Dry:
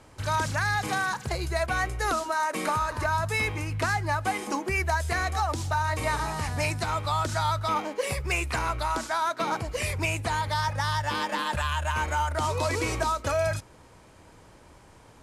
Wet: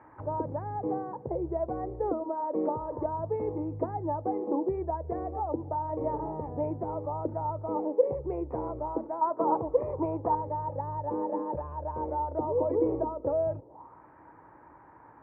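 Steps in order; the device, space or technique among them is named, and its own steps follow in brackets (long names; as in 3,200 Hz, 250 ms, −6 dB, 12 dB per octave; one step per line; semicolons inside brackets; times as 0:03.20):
0:09.21–0:10.35: parametric band 1,100 Hz +12 dB 0.96 octaves
envelope filter bass rig (envelope-controlled low-pass 500–1,800 Hz down, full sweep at −29.5 dBFS; loudspeaker in its box 75–2,000 Hz, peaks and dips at 89 Hz −5 dB, 200 Hz −4 dB, 310 Hz +8 dB, 900 Hz +10 dB, 1,500 Hz −8 dB)
level −5.5 dB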